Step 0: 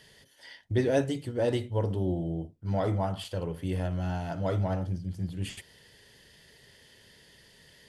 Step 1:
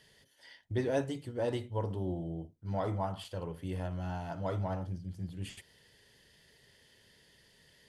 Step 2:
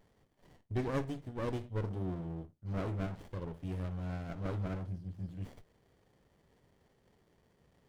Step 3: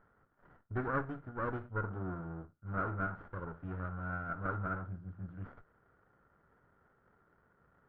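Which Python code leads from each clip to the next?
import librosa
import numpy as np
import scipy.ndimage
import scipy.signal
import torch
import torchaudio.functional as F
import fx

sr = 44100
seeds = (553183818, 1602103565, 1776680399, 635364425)

y1 = fx.dynamic_eq(x, sr, hz=1000.0, q=2.0, threshold_db=-48.0, ratio=4.0, max_db=6)
y1 = F.gain(torch.from_numpy(y1), -6.5).numpy()
y2 = fx.running_max(y1, sr, window=33)
y2 = F.gain(torch.from_numpy(y2), -2.0).numpy()
y3 = fx.lowpass_res(y2, sr, hz=1400.0, q=11.0)
y3 = F.gain(torch.from_numpy(y3), -3.0).numpy()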